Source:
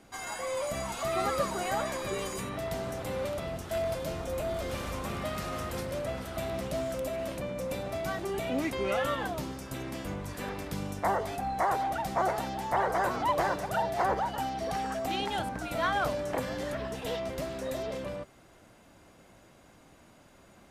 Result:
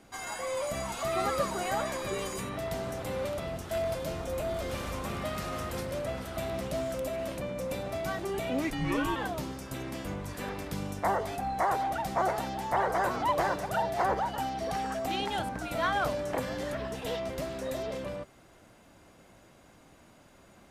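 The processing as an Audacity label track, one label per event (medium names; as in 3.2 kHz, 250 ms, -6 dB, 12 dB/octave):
8.700000	9.160000	frequency shift -240 Hz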